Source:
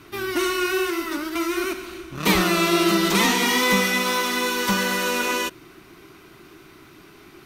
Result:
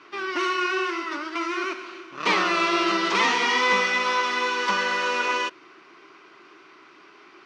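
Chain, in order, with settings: speaker cabinet 450–5100 Hz, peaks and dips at 700 Hz -3 dB, 1100 Hz +4 dB, 3800 Hz -6 dB

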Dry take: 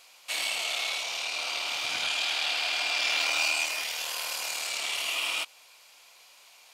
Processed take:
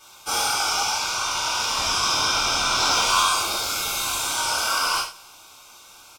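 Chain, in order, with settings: four-band scrambler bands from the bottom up 2143; on a send: feedback echo 0.105 s, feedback 56%, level -23 dB; on the sum: non-linear reverb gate 0.16 s falling, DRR -7 dB; speed mistake 44.1 kHz file played as 48 kHz

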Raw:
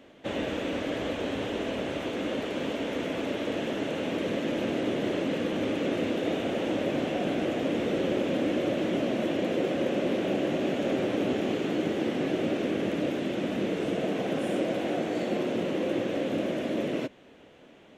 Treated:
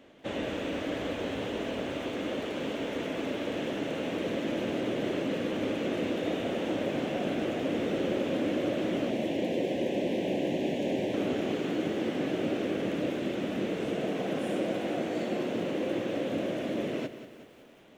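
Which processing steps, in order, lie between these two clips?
9.1–11.14 Butterworth band-stop 1300 Hz, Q 1.6; lo-fi delay 0.186 s, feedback 55%, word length 9-bit, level -12 dB; gain -2.5 dB

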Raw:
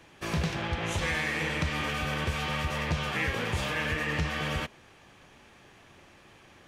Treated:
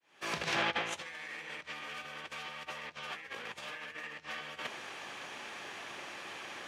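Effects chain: opening faded in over 1.23 s; negative-ratio compressor -39 dBFS, ratio -0.5; weighting filter A; gain +2.5 dB

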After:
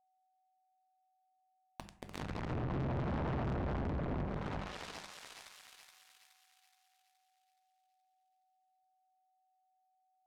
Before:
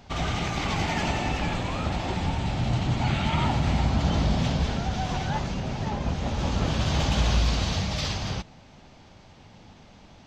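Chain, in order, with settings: Doppler pass-by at 3.18, 13 m/s, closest 1.7 m; high shelf 7300 Hz -12 dB; companded quantiser 2-bit; notches 50/100/150/200 Hz; hard clip -34 dBFS, distortion -8 dB; thinning echo 0.422 s, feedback 51%, high-pass 910 Hz, level -3 dB; treble ducked by the level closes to 770 Hz, closed at -34 dBFS; dynamic EQ 2700 Hz, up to -3 dB, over -55 dBFS, Q 0.74; on a send at -10 dB: reverb RT60 0.55 s, pre-delay 5 ms; on the sum: whine 750 Hz -79 dBFS; tube stage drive 42 dB, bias 0.75; Doppler distortion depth 0.73 ms; gain +8.5 dB

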